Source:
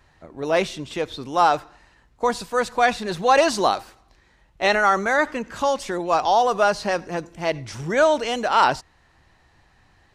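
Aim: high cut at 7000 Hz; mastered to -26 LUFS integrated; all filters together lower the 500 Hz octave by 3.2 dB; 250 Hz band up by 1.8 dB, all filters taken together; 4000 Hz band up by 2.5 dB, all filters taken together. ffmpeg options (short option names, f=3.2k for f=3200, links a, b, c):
-af "lowpass=7k,equalizer=f=250:t=o:g=4,equalizer=f=500:t=o:g=-5,equalizer=f=4k:t=o:g=3.5,volume=-3.5dB"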